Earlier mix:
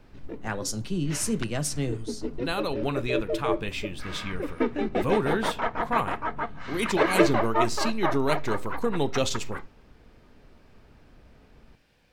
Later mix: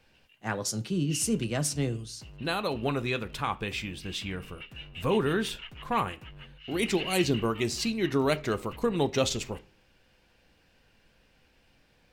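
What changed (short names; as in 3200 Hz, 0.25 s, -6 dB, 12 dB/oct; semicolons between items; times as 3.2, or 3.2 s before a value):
first sound: add ladder band-pass 2900 Hz, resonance 90%; second sound: remove synth low-pass 1200 Hz, resonance Q 1.6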